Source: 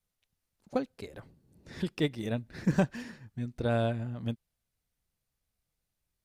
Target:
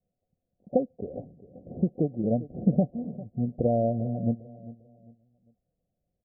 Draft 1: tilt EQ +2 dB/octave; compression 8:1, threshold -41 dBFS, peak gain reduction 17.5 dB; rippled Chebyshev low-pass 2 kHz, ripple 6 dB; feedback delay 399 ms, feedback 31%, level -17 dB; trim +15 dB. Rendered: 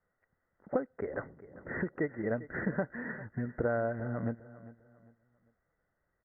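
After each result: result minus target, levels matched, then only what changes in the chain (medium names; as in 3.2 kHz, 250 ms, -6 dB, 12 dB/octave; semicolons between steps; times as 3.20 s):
compression: peak gain reduction +8.5 dB; 1 kHz band +3.0 dB
change: compression 8:1, threshold -31.5 dBFS, peak gain reduction 9 dB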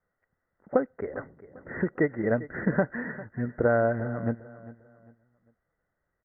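1 kHz band +3.5 dB
change: rippled Chebyshev low-pass 750 Hz, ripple 6 dB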